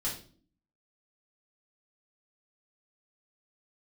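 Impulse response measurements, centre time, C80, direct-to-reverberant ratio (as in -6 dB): 28 ms, 12.5 dB, -7.0 dB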